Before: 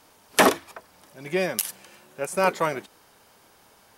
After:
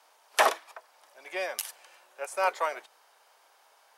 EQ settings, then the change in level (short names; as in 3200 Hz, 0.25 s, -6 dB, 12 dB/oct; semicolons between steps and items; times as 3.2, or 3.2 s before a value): ladder high-pass 510 Hz, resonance 25%; high shelf 11000 Hz -7.5 dB; +1.0 dB